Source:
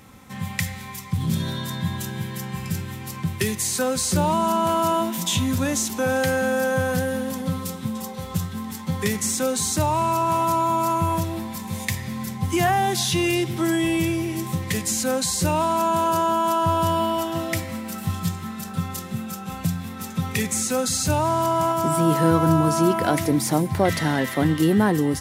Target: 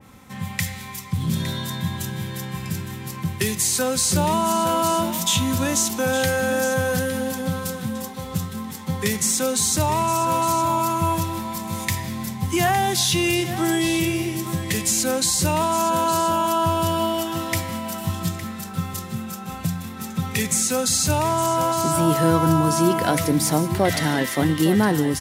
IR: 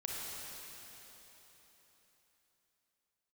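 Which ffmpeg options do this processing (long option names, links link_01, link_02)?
-filter_complex "[0:a]asplit=2[link_01][link_02];[link_02]aecho=0:1:861:0.251[link_03];[link_01][link_03]amix=inputs=2:normalize=0,adynamicequalizer=threshold=0.0178:dfrequency=2300:dqfactor=0.7:tfrequency=2300:tqfactor=0.7:attack=5:release=100:ratio=0.375:range=2:mode=boostabove:tftype=highshelf"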